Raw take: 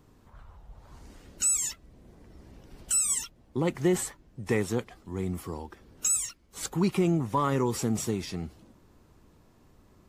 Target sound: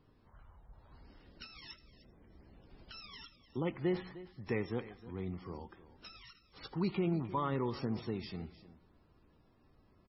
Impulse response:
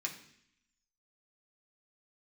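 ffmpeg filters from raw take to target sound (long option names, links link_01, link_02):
-filter_complex "[0:a]aecho=1:1:306:0.15,asplit=2[link_01][link_02];[1:a]atrim=start_sample=2205,lowpass=7800,adelay=80[link_03];[link_02][link_03]afir=irnorm=-1:irlink=0,volume=-18.5dB[link_04];[link_01][link_04]amix=inputs=2:normalize=0,volume=-8dB" -ar 22050 -c:a libmp3lame -b:a 16k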